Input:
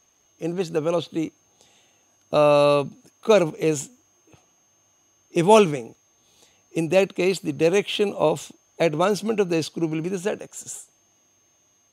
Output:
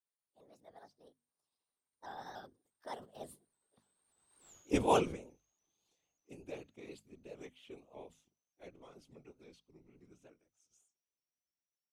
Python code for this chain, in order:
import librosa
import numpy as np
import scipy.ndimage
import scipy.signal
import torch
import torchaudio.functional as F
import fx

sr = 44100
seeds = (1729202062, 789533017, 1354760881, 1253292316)

y = fx.pitch_glide(x, sr, semitones=4.0, runs='ending unshifted')
y = fx.doppler_pass(y, sr, speed_mps=44, closest_m=2.3, pass_at_s=4.51)
y = fx.whisperise(y, sr, seeds[0])
y = fx.hum_notches(y, sr, base_hz=50, count=5)
y = fx.vibrato_shape(y, sr, shape='saw_up', rate_hz=3.4, depth_cents=100.0)
y = y * 10.0 ** (4.0 / 20.0)